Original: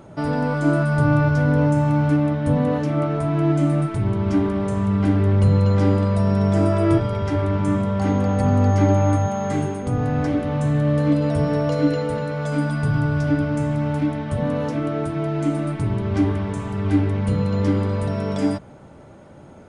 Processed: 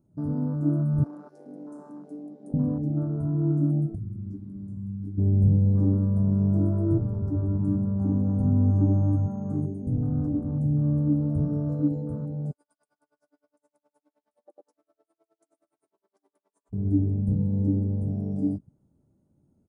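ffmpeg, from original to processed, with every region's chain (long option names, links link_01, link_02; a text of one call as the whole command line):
ffmpeg -i in.wav -filter_complex "[0:a]asettb=1/sr,asplit=3[link_01][link_02][link_03];[link_01]atrim=end=1.044[link_04];[link_02]atrim=start=1.04:end=2.54,asetpts=PTS-STARTPTS,afade=type=in:duration=0.004:curve=qsin,afade=type=out:start_time=1.496:duration=0.004:curve=qsin,aeval=exprs='(tanh(7.08*val(0)+0.45)-tanh(0.45))/7.08':channel_layout=same,highpass=300,lowpass=6700,aemphasis=mode=production:type=riaa[link_05];[link_03]atrim=start=2.536[link_06];[link_04][link_05]acrossfade=duration=0.004:curve1=hsin:curve2=qsin[link_07];[link_07][link_06]acrossfade=duration=0.004:curve1=qsin:curve2=hsin,asettb=1/sr,asplit=3[link_08][link_09][link_10];[link_08]atrim=end=3.954[link_11];[link_09]atrim=start=3.95:end=5.18,asetpts=PTS-STARTPTS,afade=type=in:duration=0.004:curve=qsin,afade=type=out:start_time=1.226:duration=0.004:curve=qsin,acrossover=split=1500|4800[link_12][link_13][link_14];[link_12]acompressor=threshold=-32dB:ratio=4[link_15];[link_13]acompressor=threshold=-44dB:ratio=4[link_16];[link_14]acompressor=threshold=-58dB:ratio=4[link_17];[link_15][link_16][link_17]amix=inputs=3:normalize=0,asplit=2[link_18][link_19];[link_19]adelay=19,volume=-3.5dB[link_20];[link_18][link_20]amix=inputs=2:normalize=0,atrim=end_sample=54243[link_21];[link_10]atrim=start=5.176[link_22];[link_11][link_21]acrossfade=duration=0.004:curve1=hsin:curve2=qsin[link_23];[link_23][link_22]acrossfade=duration=0.004:curve1=qsin:curve2=hsin,asettb=1/sr,asplit=3[link_24][link_25][link_26];[link_24]atrim=end=12.514[link_27];[link_25]atrim=start=12.51:end=16.73,asetpts=PTS-STARTPTS,afade=type=in:duration=0.004:curve=qsin,afade=type=out:start_time=4.216:duration=0.004:curve=qsin,highpass=frequency=570:width=0.5412,highpass=frequency=570:width=1.3066,aeval=exprs='val(0)*pow(10,-35*(0.5-0.5*cos(2*PI*9.6*n/s))/20)':channel_layout=same[link_28];[link_26]atrim=start=16.726[link_29];[link_27][link_28]acrossfade=duration=0.004:curve1=hsin:curve2=qsin[link_30];[link_30][link_29]acrossfade=duration=0.004:curve1=qsin:curve2=hsin,afwtdn=0.0631,firequalizer=gain_entry='entry(260,0);entry(510,-13);entry(1900,-25);entry(2900,-26);entry(4700,-15);entry(9100,-2)':delay=0.05:min_phase=1,volume=-3.5dB" out.wav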